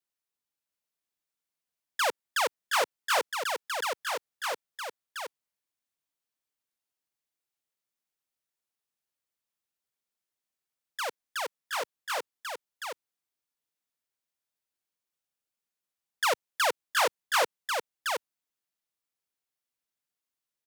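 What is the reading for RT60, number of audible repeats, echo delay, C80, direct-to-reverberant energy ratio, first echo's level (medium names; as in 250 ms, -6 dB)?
no reverb, 1, 721 ms, no reverb, no reverb, -4.5 dB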